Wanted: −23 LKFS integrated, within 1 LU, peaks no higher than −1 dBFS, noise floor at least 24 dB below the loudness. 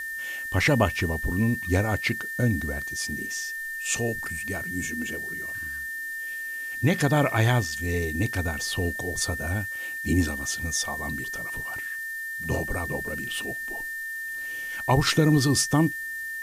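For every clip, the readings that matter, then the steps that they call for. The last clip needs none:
interfering tone 1,800 Hz; level of the tone −31 dBFS; background noise floor −34 dBFS; target noise floor −51 dBFS; integrated loudness −26.5 LKFS; sample peak −8.5 dBFS; target loudness −23.0 LKFS
→ notch filter 1,800 Hz, Q 30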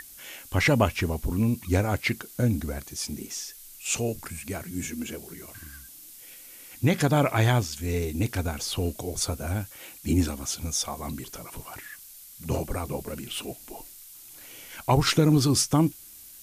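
interfering tone none found; background noise floor −47 dBFS; target noise floor −51 dBFS
→ noise reduction from a noise print 6 dB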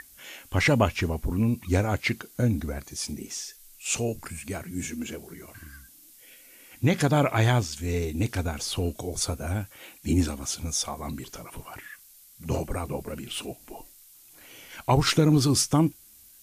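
background noise floor −53 dBFS; integrated loudness −27.0 LKFS; sample peak −9.5 dBFS; target loudness −23.0 LKFS
→ level +4 dB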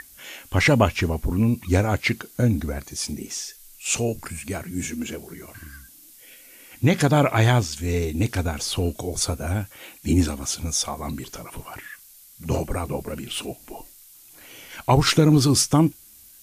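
integrated loudness −23.0 LKFS; sample peak −5.5 dBFS; background noise floor −49 dBFS

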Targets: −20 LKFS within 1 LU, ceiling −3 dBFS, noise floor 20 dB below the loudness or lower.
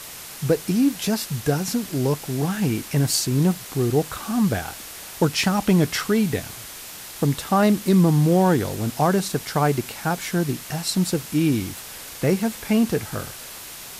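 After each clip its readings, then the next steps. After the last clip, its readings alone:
background noise floor −38 dBFS; target noise floor −42 dBFS; integrated loudness −22.0 LKFS; sample peak −8.0 dBFS; target loudness −20.0 LKFS
→ noise reduction from a noise print 6 dB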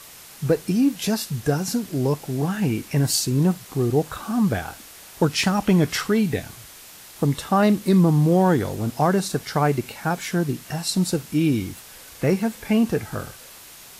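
background noise floor −44 dBFS; integrated loudness −22.0 LKFS; sample peak −8.0 dBFS; target loudness −20.0 LKFS
→ level +2 dB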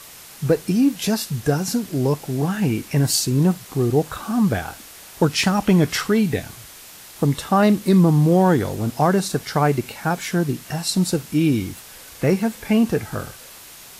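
integrated loudness −20.0 LKFS; sample peak −6.0 dBFS; background noise floor −42 dBFS

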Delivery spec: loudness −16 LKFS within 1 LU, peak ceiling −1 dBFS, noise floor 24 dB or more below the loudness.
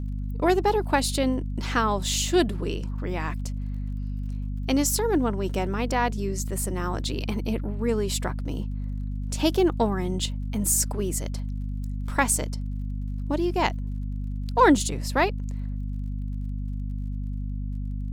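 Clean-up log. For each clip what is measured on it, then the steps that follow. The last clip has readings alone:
crackle rate 39 per second; mains hum 50 Hz; hum harmonics up to 250 Hz; level of the hum −27 dBFS; integrated loudness −26.5 LKFS; sample peak −5.5 dBFS; target loudness −16.0 LKFS
→ click removal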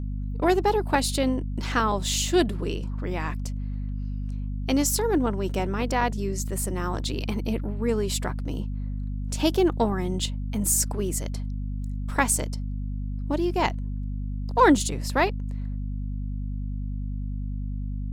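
crackle rate 1.1 per second; mains hum 50 Hz; hum harmonics up to 250 Hz; level of the hum −27 dBFS
→ mains-hum notches 50/100/150/200/250 Hz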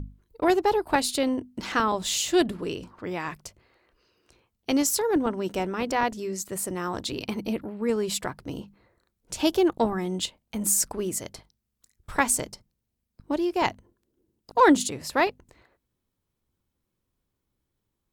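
mains hum none found; integrated loudness −26.0 LKFS; sample peak −6.5 dBFS; target loudness −16.0 LKFS
→ level +10 dB
brickwall limiter −1 dBFS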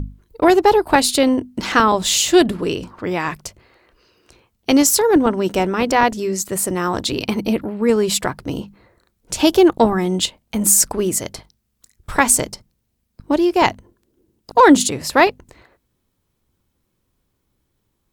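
integrated loudness −16.5 LKFS; sample peak −1.0 dBFS; background noise floor −71 dBFS

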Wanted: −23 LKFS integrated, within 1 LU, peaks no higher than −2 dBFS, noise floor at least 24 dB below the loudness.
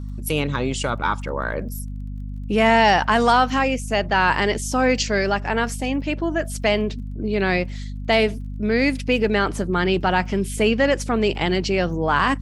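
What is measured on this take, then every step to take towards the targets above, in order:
crackle rate 26 per second; mains hum 50 Hz; hum harmonics up to 250 Hz; level of the hum −28 dBFS; integrated loudness −21.0 LKFS; sample peak −3.5 dBFS; target loudness −23.0 LKFS
→ click removal
hum removal 50 Hz, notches 5
level −2 dB

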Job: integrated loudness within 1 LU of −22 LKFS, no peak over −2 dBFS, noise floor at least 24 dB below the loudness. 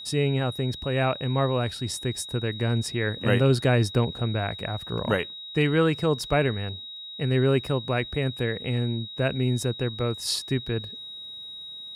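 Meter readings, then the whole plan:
crackle rate 34 per second; interfering tone 3,800 Hz; level of the tone −37 dBFS; integrated loudness −26.0 LKFS; sample peak −8.5 dBFS; target loudness −22.0 LKFS
→ click removal
notch filter 3,800 Hz, Q 30
level +4 dB

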